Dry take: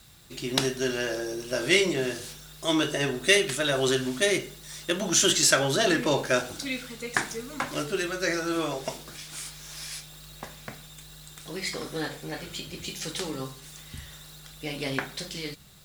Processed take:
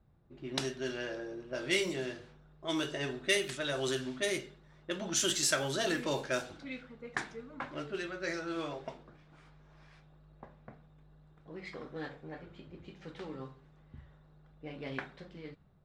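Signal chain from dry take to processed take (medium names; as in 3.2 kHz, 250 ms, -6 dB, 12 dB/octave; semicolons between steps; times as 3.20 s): level-controlled noise filter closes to 710 Hz, open at -19.5 dBFS; trim -9 dB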